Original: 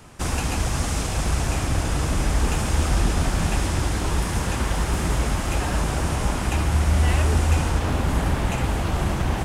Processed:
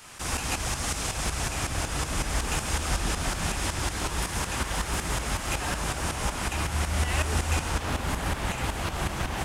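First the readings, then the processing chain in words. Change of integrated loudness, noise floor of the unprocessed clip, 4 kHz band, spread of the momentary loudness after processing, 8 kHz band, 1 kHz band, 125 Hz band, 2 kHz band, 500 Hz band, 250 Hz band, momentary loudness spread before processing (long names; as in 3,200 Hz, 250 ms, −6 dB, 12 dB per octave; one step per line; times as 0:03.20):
−5.5 dB, −26 dBFS, −0.5 dB, 3 LU, 0.0 dB, −3.5 dB, −9.0 dB, −1.5 dB, −6.0 dB, −8.0 dB, 4 LU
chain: tilt shelving filter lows −4.5 dB, about 700 Hz
shaped tremolo saw up 5.4 Hz, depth 65%
one half of a high-frequency compander encoder only
level −1.5 dB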